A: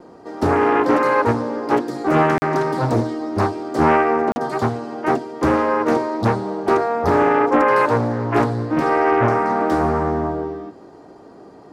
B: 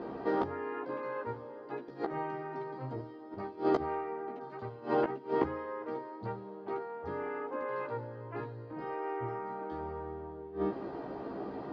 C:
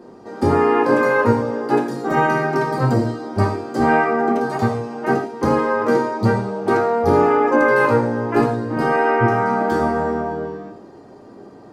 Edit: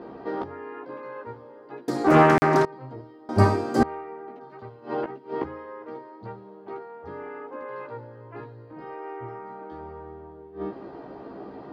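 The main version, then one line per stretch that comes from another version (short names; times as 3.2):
B
1.88–2.65 from A
3.29–3.83 from C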